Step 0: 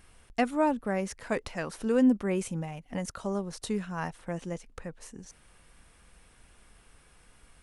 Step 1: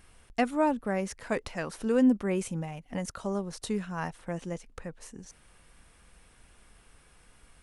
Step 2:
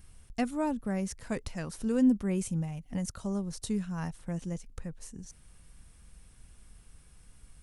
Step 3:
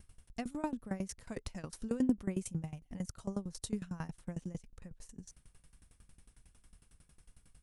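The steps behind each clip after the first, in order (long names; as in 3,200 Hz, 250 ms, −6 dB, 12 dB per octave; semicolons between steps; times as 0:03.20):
no processing that can be heard
bass and treble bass +13 dB, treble +9 dB; level −7.5 dB
tremolo with a ramp in dB decaying 11 Hz, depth 21 dB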